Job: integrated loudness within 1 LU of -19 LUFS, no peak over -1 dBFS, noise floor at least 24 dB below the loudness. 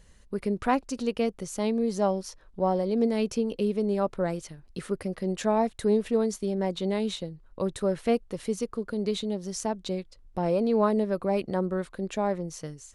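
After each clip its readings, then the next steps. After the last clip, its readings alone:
loudness -28.5 LUFS; peak level -12.0 dBFS; loudness target -19.0 LUFS
-> trim +9.5 dB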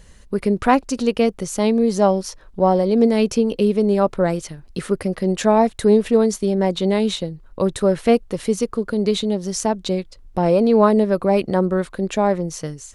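loudness -19.0 LUFS; peak level -2.5 dBFS; noise floor -46 dBFS

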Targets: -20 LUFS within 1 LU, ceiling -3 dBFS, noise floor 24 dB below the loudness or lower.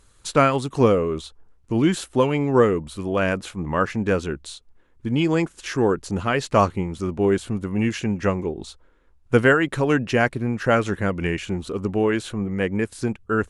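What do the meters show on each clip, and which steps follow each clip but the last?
loudness -22.5 LUFS; peak level -3.5 dBFS; loudness target -20.0 LUFS
-> trim +2.5 dB; peak limiter -3 dBFS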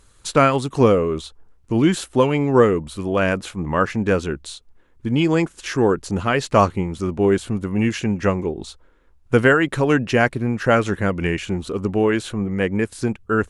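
loudness -20.0 LUFS; peak level -3.0 dBFS; noise floor -54 dBFS

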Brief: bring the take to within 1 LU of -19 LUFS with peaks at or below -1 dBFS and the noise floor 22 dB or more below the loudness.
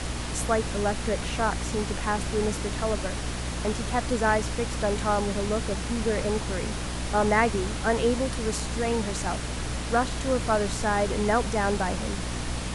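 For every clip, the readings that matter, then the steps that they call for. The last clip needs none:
hum 60 Hz; highest harmonic 300 Hz; hum level -31 dBFS; noise floor -32 dBFS; noise floor target -49 dBFS; loudness -27.0 LUFS; peak level -9.0 dBFS; loudness target -19.0 LUFS
-> hum notches 60/120/180/240/300 Hz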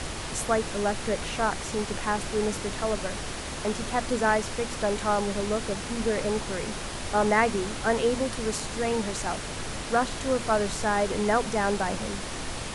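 hum not found; noise floor -35 dBFS; noise floor target -50 dBFS
-> noise print and reduce 15 dB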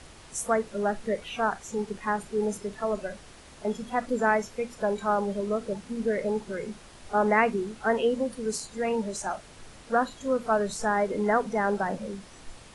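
noise floor -50 dBFS; noise floor target -51 dBFS
-> noise print and reduce 6 dB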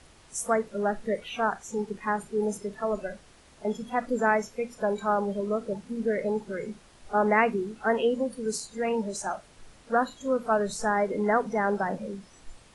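noise floor -56 dBFS; loudness -28.5 LUFS; peak level -9.5 dBFS; loudness target -19.0 LUFS
-> trim +9.5 dB; peak limiter -1 dBFS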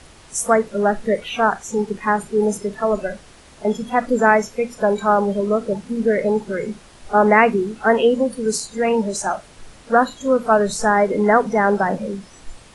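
loudness -19.0 LUFS; peak level -1.0 dBFS; noise floor -46 dBFS

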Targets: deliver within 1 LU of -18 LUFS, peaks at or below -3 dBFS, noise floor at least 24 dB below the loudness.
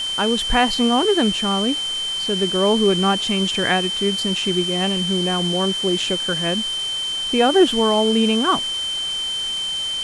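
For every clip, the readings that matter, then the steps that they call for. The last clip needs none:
steady tone 3.1 kHz; tone level -22 dBFS; noise floor -25 dBFS; noise floor target -43 dBFS; loudness -18.5 LUFS; peak level -3.5 dBFS; loudness target -18.0 LUFS
-> band-stop 3.1 kHz, Q 30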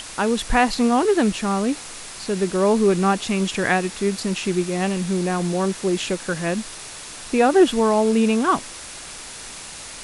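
steady tone not found; noise floor -37 dBFS; noise floor target -45 dBFS
-> noise print and reduce 8 dB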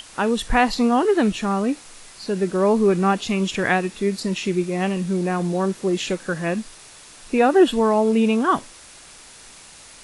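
noise floor -45 dBFS; loudness -21.0 LUFS; peak level -4.5 dBFS; loudness target -18.0 LUFS
-> trim +3 dB; peak limiter -3 dBFS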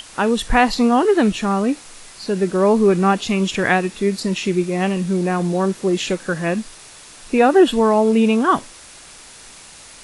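loudness -18.0 LUFS; peak level -3.0 dBFS; noise floor -42 dBFS

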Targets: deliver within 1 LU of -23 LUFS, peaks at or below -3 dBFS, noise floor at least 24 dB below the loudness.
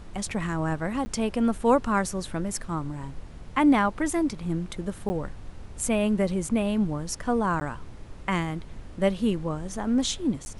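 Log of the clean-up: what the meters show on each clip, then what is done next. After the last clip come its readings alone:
dropouts 4; longest dropout 10 ms; noise floor -43 dBFS; noise floor target -51 dBFS; loudness -27.0 LUFS; peak level -9.5 dBFS; loudness target -23.0 LUFS
-> interpolate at 1.05/5.09/7.60/10.45 s, 10 ms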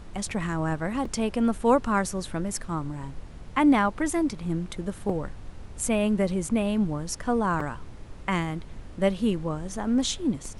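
dropouts 0; noise floor -43 dBFS; noise floor target -51 dBFS
-> noise print and reduce 8 dB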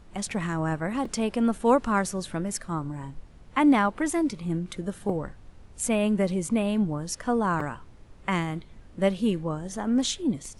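noise floor -50 dBFS; noise floor target -51 dBFS
-> noise print and reduce 6 dB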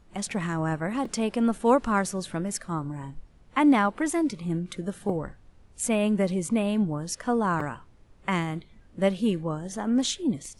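noise floor -56 dBFS; loudness -27.0 LUFS; peak level -10.0 dBFS; loudness target -23.0 LUFS
-> trim +4 dB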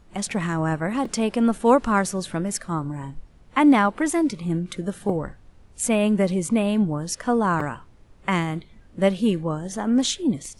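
loudness -23.0 LUFS; peak level -6.0 dBFS; noise floor -52 dBFS

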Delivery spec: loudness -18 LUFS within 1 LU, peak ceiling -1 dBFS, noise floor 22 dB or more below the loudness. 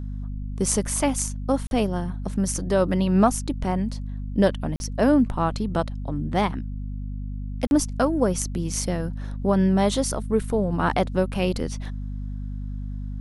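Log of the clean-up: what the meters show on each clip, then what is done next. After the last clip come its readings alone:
dropouts 3; longest dropout 41 ms; hum 50 Hz; highest harmonic 250 Hz; hum level -28 dBFS; loudness -24.5 LUFS; peak level -4.5 dBFS; loudness target -18.0 LUFS
-> interpolate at 1.67/4.76/7.67 s, 41 ms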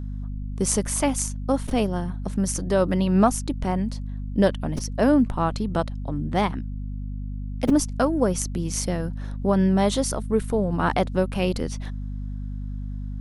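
dropouts 0; hum 50 Hz; highest harmonic 250 Hz; hum level -28 dBFS
-> de-hum 50 Hz, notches 5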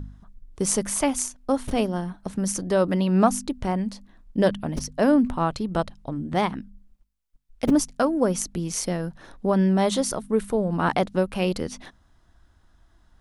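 hum not found; loudness -24.5 LUFS; peak level -5.5 dBFS; loudness target -18.0 LUFS
-> trim +6.5 dB; peak limiter -1 dBFS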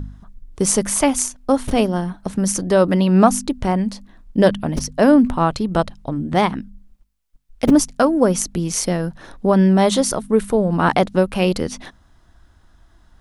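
loudness -18.0 LUFS; peak level -1.0 dBFS; noise floor -55 dBFS

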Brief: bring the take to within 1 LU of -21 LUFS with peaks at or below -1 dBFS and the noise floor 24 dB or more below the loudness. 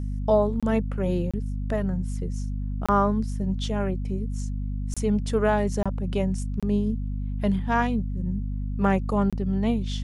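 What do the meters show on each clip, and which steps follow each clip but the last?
dropouts 7; longest dropout 26 ms; hum 50 Hz; highest harmonic 250 Hz; hum level -27 dBFS; loudness -26.5 LUFS; peak level -8.5 dBFS; loudness target -21.0 LUFS
-> interpolate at 0.60/1.31/2.86/4.94/5.83/6.60/9.30 s, 26 ms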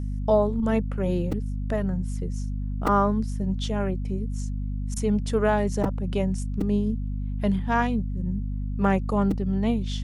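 dropouts 0; hum 50 Hz; highest harmonic 250 Hz; hum level -27 dBFS
-> de-hum 50 Hz, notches 5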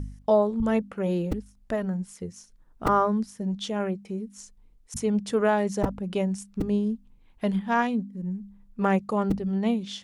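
hum not found; loudness -27.0 LUFS; peak level -10.0 dBFS; loudness target -21.0 LUFS
-> trim +6 dB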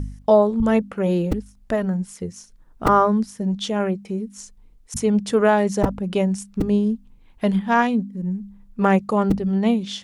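loudness -21.0 LUFS; peak level -4.0 dBFS; noise floor -51 dBFS

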